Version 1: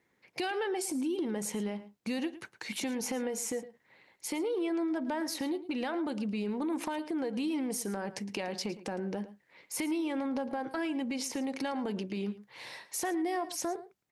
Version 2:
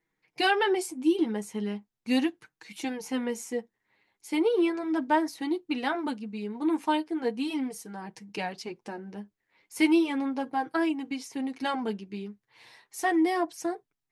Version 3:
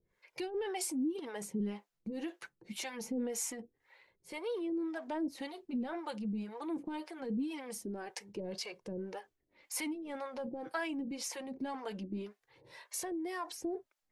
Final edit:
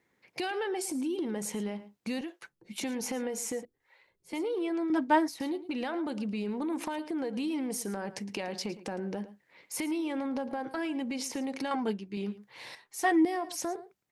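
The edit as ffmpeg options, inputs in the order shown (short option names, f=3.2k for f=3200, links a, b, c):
-filter_complex "[2:a]asplit=2[a][b];[1:a]asplit=3[c][d][e];[0:a]asplit=6[f][g][h][i][j][k];[f]atrim=end=2.212[l];[a]atrim=start=2.208:end=2.782[m];[g]atrim=start=2.778:end=3.652[n];[b]atrim=start=3.648:end=4.332[o];[h]atrim=start=4.328:end=4.902[p];[c]atrim=start=4.898:end=5.402[q];[i]atrim=start=5.398:end=11.712[r];[d]atrim=start=11.708:end=12.172[s];[j]atrim=start=12.168:end=12.752[t];[e]atrim=start=12.748:end=13.252[u];[k]atrim=start=13.248[v];[l][m]acrossfade=d=0.004:c1=hsin:c2=hsin[w];[w][n]acrossfade=d=0.004:c1=hsin:c2=hsin[x];[x][o]acrossfade=d=0.004:c1=hsin:c2=hsin[y];[y][p]acrossfade=d=0.004:c1=hsin:c2=hsin[z];[z][q]acrossfade=d=0.004:c1=hsin:c2=hsin[aa];[aa][r]acrossfade=d=0.004:c1=hsin:c2=hsin[ab];[ab][s]acrossfade=d=0.004:c1=hsin:c2=hsin[ac];[ac][t]acrossfade=d=0.004:c1=hsin:c2=hsin[ad];[ad][u]acrossfade=d=0.004:c1=hsin:c2=hsin[ae];[ae][v]acrossfade=d=0.004:c1=hsin:c2=hsin"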